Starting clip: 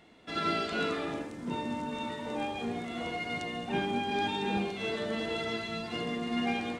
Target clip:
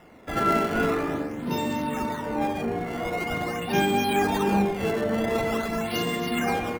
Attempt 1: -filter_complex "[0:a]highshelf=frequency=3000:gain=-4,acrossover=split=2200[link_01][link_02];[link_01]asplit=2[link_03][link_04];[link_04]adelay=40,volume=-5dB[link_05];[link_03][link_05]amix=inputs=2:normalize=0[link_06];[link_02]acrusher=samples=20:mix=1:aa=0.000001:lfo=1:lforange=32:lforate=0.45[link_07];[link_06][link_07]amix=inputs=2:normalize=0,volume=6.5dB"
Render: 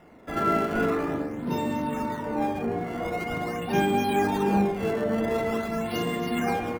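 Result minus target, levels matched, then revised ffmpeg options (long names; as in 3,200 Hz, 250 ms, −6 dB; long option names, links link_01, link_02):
4,000 Hz band −4.0 dB
-filter_complex "[0:a]highshelf=frequency=3000:gain=6,acrossover=split=2200[link_01][link_02];[link_01]asplit=2[link_03][link_04];[link_04]adelay=40,volume=-5dB[link_05];[link_03][link_05]amix=inputs=2:normalize=0[link_06];[link_02]acrusher=samples=20:mix=1:aa=0.000001:lfo=1:lforange=32:lforate=0.45[link_07];[link_06][link_07]amix=inputs=2:normalize=0,volume=6.5dB"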